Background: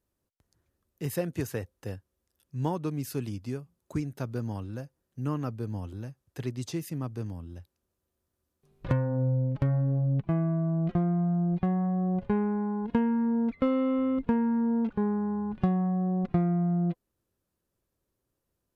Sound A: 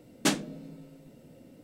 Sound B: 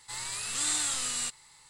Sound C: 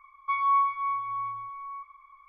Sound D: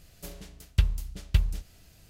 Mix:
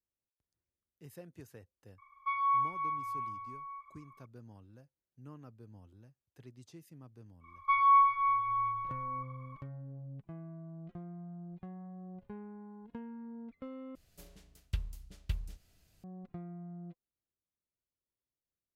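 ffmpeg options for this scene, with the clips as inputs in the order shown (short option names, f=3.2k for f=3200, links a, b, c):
-filter_complex "[3:a]asplit=2[a][b];[0:a]volume=-19.5dB[c];[b]lowshelf=f=140:g=8.5[d];[c]asplit=2[e][f];[e]atrim=end=13.954[g];[4:a]atrim=end=2.09,asetpts=PTS-STARTPTS,volume=-12.5dB[h];[f]atrim=start=16.036[i];[a]atrim=end=2.28,asetpts=PTS-STARTPTS,volume=-6dB,afade=t=in:d=0.004:c=hsin,afade=t=out:st=2.276:d=0.004:c=hsin,adelay=1980[j];[d]atrim=end=2.28,asetpts=PTS-STARTPTS,afade=t=in:d=0.1,afade=t=out:st=2.18:d=0.1,adelay=7400[k];[g][h]acrossfade=d=0.004:c1=hsin:c2=hsin[l];[l][i]acrossfade=d=0.004:c1=hsin:c2=hsin[m];[m][j][k]amix=inputs=3:normalize=0"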